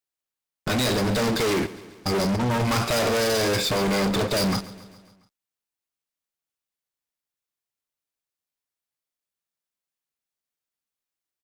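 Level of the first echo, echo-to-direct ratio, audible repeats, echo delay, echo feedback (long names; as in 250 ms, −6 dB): −18.0 dB, −16.0 dB, 4, 137 ms, 59%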